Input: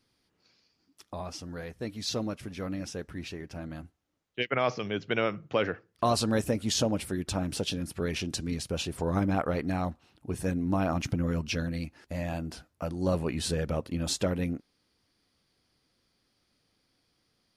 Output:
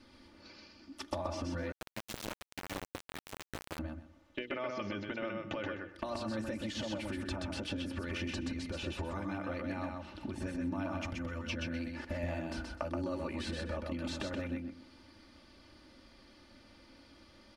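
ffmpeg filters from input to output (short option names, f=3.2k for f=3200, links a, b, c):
-filter_complex "[0:a]acrossover=split=1100|2500|7700[a][b][c][d];[a]acompressor=threshold=-37dB:ratio=4[e];[b]acompressor=threshold=-43dB:ratio=4[f];[c]acompressor=threshold=-48dB:ratio=4[g];[d]acompressor=threshold=-56dB:ratio=4[h];[e][f][g][h]amix=inputs=4:normalize=0,aemphasis=mode=reproduction:type=75fm,alimiter=level_in=8dB:limit=-24dB:level=0:latency=1:release=325,volume=-8dB,acompressor=threshold=-50dB:ratio=10,bandreject=f=60:t=h:w=6,bandreject=f=120:t=h:w=6,bandreject=f=180:t=h:w=6,bandreject=f=240:t=h:w=6,bandreject=f=300:t=h:w=6,bandreject=f=360:t=h:w=6,bandreject=f=420:t=h:w=6,bandreject=f=480:t=h:w=6,aecho=1:1:3.4:0.74,aecho=1:1:127|254|381:0.668|0.14|0.0295,asettb=1/sr,asplit=3[i][j][k];[i]atrim=end=1.724[l];[j]atrim=start=1.72:end=3.79,asetpts=PTS-STARTPTS,afade=t=in:d=0.004:c=qsin,afade=t=out:st=2.066:d=0.004:c=qsin,aeval=exprs='val(0)*gte(abs(val(0)),0.00596)':c=same[m];[k]atrim=start=3.786[n];[l][m]acrossfade=d=0.004:c1=hsin:c2=qsin[o];[o][n]acrossfade=d=0.004:c1=qsin:c2=hsin,volume=13.5dB"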